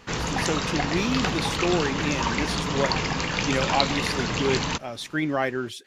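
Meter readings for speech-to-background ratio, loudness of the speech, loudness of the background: -2.5 dB, -28.5 LUFS, -26.0 LUFS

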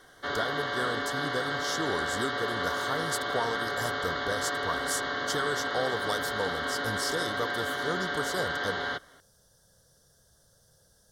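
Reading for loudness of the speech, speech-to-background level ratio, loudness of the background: -34.5 LUFS, -3.5 dB, -31.0 LUFS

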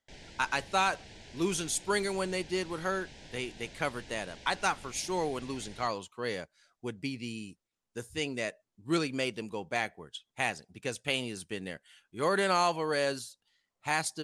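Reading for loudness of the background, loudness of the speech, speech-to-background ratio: -50.5 LUFS, -33.0 LUFS, 17.5 dB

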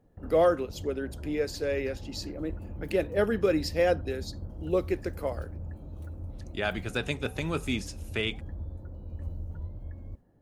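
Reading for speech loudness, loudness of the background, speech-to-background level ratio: -30.5 LUFS, -42.0 LUFS, 11.5 dB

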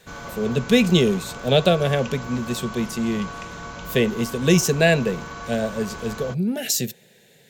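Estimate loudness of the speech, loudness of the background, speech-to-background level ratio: -22.0 LUFS, -35.5 LUFS, 13.5 dB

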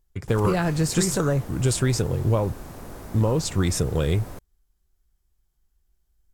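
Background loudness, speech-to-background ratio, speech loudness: -40.5 LUFS, 16.5 dB, -24.0 LUFS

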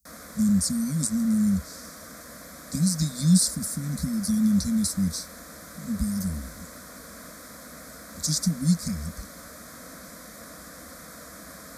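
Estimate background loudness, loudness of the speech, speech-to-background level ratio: -42.5 LUFS, -25.5 LUFS, 17.0 dB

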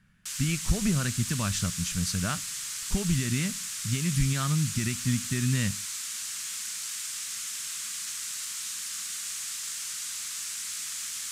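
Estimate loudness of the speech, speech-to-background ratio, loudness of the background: -29.5 LUFS, 3.0 dB, -32.5 LUFS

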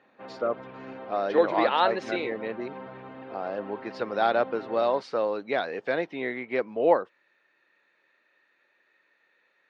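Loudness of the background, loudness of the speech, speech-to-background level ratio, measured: -42.5 LUFS, -27.5 LUFS, 15.0 dB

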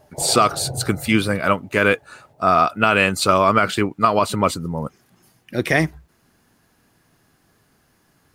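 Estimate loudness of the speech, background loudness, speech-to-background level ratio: -19.0 LUFS, -33.0 LUFS, 14.0 dB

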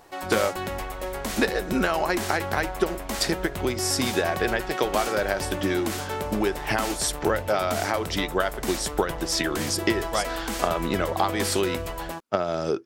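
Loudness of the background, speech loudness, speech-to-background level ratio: -32.0 LUFS, -26.5 LUFS, 5.5 dB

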